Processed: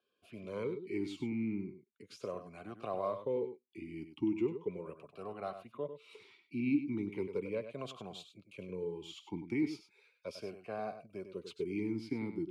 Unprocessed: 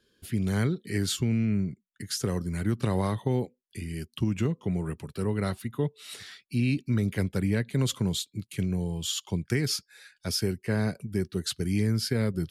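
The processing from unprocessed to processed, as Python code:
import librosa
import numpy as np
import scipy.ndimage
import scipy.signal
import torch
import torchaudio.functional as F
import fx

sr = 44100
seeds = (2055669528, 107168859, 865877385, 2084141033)

p1 = x + fx.echo_single(x, sr, ms=98, db=-10.5, dry=0)
p2 = fx.vowel_sweep(p1, sr, vowels='a-u', hz=0.37)
y = p2 * librosa.db_to_amplitude(3.5)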